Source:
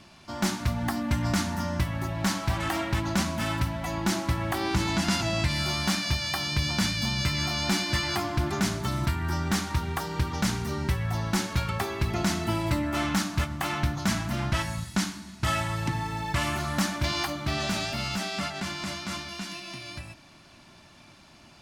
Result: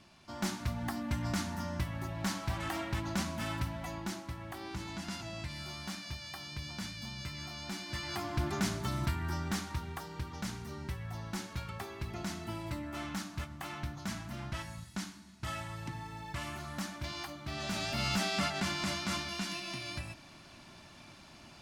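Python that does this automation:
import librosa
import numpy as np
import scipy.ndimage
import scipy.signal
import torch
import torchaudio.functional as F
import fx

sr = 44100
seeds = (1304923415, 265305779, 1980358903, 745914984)

y = fx.gain(x, sr, db=fx.line((3.82, -8.0), (4.24, -15.0), (7.77, -15.0), (8.4, -6.0), (9.14, -6.0), (10.17, -12.5), (17.44, -12.5), (18.09, -1.0)))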